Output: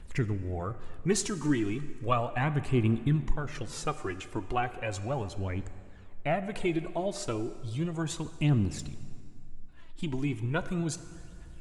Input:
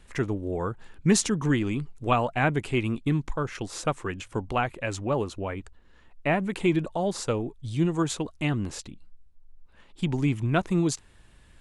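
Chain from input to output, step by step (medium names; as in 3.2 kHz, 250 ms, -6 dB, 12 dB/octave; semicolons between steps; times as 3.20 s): bass shelf 150 Hz +6 dB; in parallel at -2 dB: compression, threshold -32 dBFS, peak gain reduction 17 dB; on the sum: phaser 0.35 Hz, delay 3.4 ms, feedback 56%; plate-style reverb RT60 2.4 s, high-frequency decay 0.7×, DRR 12 dB; trim -9 dB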